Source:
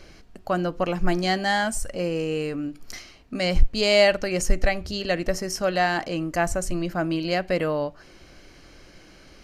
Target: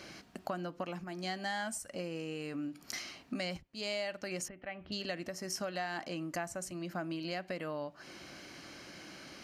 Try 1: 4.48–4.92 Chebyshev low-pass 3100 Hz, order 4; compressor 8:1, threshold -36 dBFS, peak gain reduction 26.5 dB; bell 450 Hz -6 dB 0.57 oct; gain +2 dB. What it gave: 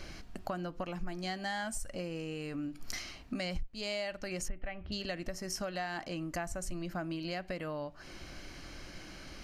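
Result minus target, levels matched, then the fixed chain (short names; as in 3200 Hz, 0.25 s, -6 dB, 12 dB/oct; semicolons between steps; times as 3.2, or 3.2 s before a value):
125 Hz band +2.5 dB
4.48–4.92 Chebyshev low-pass 3100 Hz, order 4; compressor 8:1, threshold -36 dBFS, peak gain reduction 26.5 dB; HPF 160 Hz 12 dB/oct; bell 450 Hz -6 dB 0.57 oct; gain +2 dB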